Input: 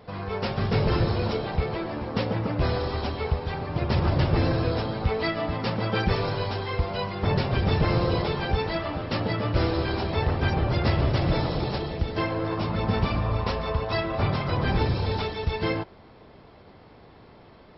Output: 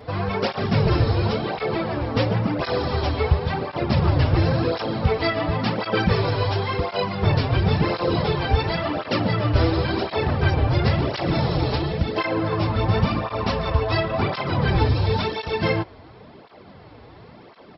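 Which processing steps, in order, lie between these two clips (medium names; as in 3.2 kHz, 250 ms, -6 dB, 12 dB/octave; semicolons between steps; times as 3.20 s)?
in parallel at +2 dB: gain riding 0.5 s; on the sum: resampled via 16 kHz; cancelling through-zero flanger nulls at 0.94 Hz, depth 5.9 ms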